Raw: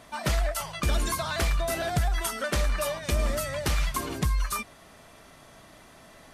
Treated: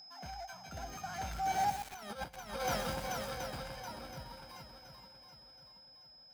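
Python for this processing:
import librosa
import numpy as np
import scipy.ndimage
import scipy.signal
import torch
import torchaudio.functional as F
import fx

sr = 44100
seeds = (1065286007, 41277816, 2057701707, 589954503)

y = np.r_[np.sort(x[:len(x) // 8 * 8].reshape(-1, 8), axis=1).ravel(), x[len(x) // 8 * 8:]]
y = fx.doppler_pass(y, sr, speed_mps=45, closest_m=2.5, pass_at_s=2.02)
y = fx.high_shelf(y, sr, hz=4500.0, db=-11.0)
y = y + 10.0 ** (-61.0 / 20.0) * np.sin(2.0 * np.pi * 5100.0 * np.arange(len(y)) / sr)
y = fx.echo_swing(y, sr, ms=724, ratio=1.5, feedback_pct=36, wet_db=-9.0)
y = fx.over_compress(y, sr, threshold_db=-45.0, ratio=-0.5)
y = scipy.signal.sosfilt(scipy.signal.butter(2, 120.0, 'highpass', fs=sr, output='sos'), y)
y = fx.transient(y, sr, attack_db=-6, sustain_db=-1)
y = fx.peak_eq(y, sr, hz=770.0, db=4.0, octaves=0.43)
y = y + 0.53 * np.pad(y, (int(1.3 * sr / 1000.0), 0))[:len(y)]
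y = fx.echo_crushed(y, sr, ms=123, feedback_pct=55, bits=8, wet_db=-7.5)
y = y * 10.0 ** (9.5 / 20.0)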